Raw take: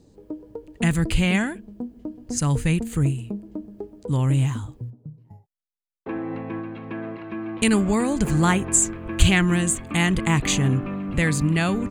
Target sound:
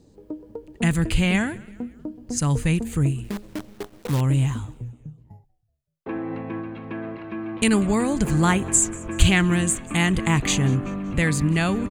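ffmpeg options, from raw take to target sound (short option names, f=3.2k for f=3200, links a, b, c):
-filter_complex "[0:a]asettb=1/sr,asplit=3[a][b][c];[a]atrim=end=3.244[d];[b]atrim=start=3.24:end=4.21,asetpts=PTS-STARTPTS,afade=t=in:d=0.004:c=qsin,afade=t=out:st=0.966:d=0.004:c=qsin,acrusher=bits=6:dc=4:mix=0:aa=0.000001[e];[c]atrim=start=4.206[f];[d][e]acrossfade=d=0.004:c1=hsin:c2=qsin[g];[g][f]acrossfade=d=0.004:c1=qsin:c2=hsin,asplit=4[h][i][j][k];[i]adelay=189,afreqshift=-86,volume=-23dB[l];[j]adelay=378,afreqshift=-172,volume=-29.2dB[m];[k]adelay=567,afreqshift=-258,volume=-35.4dB[n];[h][l][m][n]amix=inputs=4:normalize=0"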